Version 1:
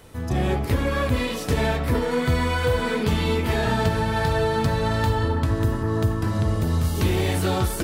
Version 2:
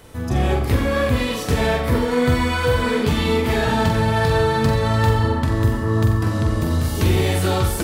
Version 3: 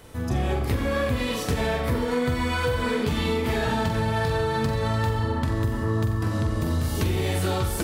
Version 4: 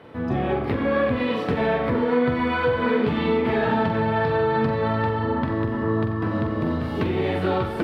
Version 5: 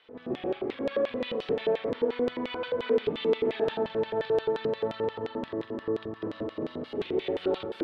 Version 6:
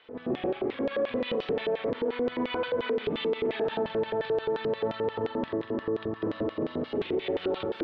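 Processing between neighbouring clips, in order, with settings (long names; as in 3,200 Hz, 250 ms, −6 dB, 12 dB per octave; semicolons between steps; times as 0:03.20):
flutter between parallel walls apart 7.7 metres, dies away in 0.44 s; level +2.5 dB
downward compressor, threshold −18 dBFS, peak gain reduction 6.5 dB; level −2.5 dB
high-pass filter 170 Hz 12 dB per octave; high-frequency loss of the air 420 metres; level +6 dB
echo ahead of the sound 56 ms −13 dB; auto-filter band-pass square 5.7 Hz 420–3,400 Hz
brickwall limiter −25 dBFS, peak gain reduction 10.5 dB; high-frequency loss of the air 140 metres; level +5 dB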